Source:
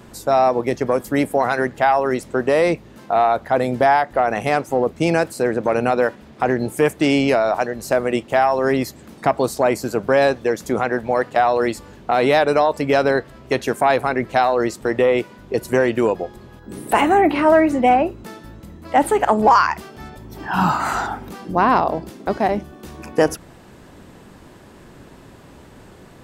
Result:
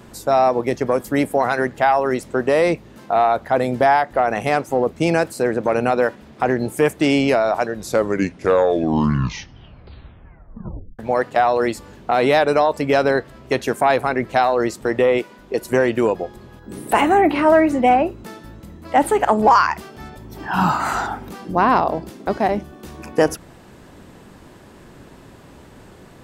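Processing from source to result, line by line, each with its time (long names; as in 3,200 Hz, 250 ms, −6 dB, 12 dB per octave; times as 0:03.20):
0:07.52: tape stop 3.47 s
0:15.18–0:15.71: parametric band 100 Hz −11 dB 1.4 octaves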